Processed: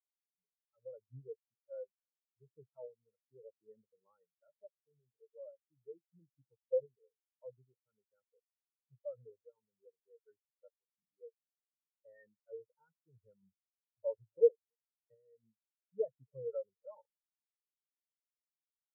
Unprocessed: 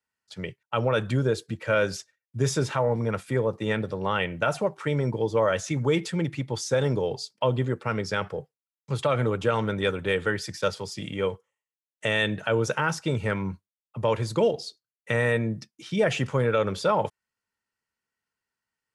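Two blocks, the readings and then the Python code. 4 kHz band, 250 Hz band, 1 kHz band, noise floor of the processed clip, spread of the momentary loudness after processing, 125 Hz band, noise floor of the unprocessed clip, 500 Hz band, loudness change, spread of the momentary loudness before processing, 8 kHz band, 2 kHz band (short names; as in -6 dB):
under -40 dB, under -40 dB, under -40 dB, under -85 dBFS, 23 LU, -36.5 dB, under -85 dBFS, -14.5 dB, -12.5 dB, 10 LU, under -40 dB, under -40 dB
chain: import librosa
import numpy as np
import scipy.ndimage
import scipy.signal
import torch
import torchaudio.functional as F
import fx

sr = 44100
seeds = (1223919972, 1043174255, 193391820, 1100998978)

p1 = scipy.signal.sosfilt(scipy.signal.butter(2, 1300.0, 'lowpass', fs=sr, output='sos'), x)
p2 = fx.low_shelf(p1, sr, hz=360.0, db=-7.0)
p3 = fx.tremolo_random(p2, sr, seeds[0], hz=3.5, depth_pct=55)
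p4 = p3 + fx.echo_single(p3, sr, ms=279, db=-18.5, dry=0)
p5 = fx.spectral_expand(p4, sr, expansion=4.0)
y = F.gain(torch.from_numpy(p5), -1.5).numpy()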